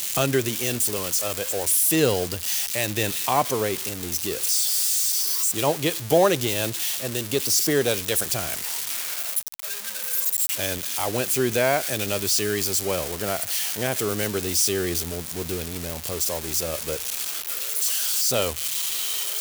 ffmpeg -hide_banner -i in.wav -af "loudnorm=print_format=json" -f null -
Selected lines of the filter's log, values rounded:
"input_i" : "-22.9",
"input_tp" : "-6.3",
"input_lra" : "3.4",
"input_thresh" : "-32.9",